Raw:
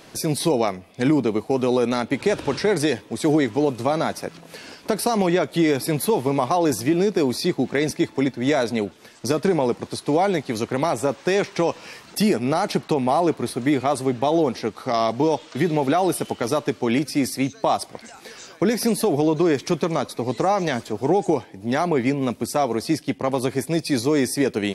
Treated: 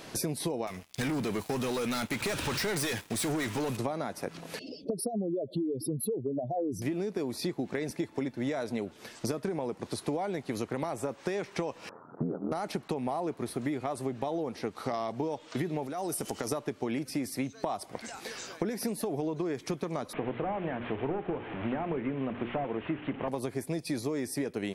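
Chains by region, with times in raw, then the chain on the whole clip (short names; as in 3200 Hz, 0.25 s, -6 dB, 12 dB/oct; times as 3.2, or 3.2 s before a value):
0.67–3.77 passive tone stack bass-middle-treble 5-5-5 + sample leveller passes 5
4.59–6.82 spectral contrast raised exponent 2.5 + elliptic band-stop 620–3000 Hz, stop band 50 dB
11.89–12.52 self-modulated delay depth 0.11 ms + Chebyshev band-pass 150–1400 Hz, order 5 + ring modulator 42 Hz
15.86–16.52 resonant high shelf 4500 Hz +6.5 dB, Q 1.5 + compressor, threshold -26 dBFS
20.13–23.28 delta modulation 16 kbps, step -30 dBFS + notches 60/120/180/240/300/360/420/480/540 Hz
whole clip: dynamic EQ 4600 Hz, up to -5 dB, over -42 dBFS, Q 0.82; compressor 12:1, threshold -29 dBFS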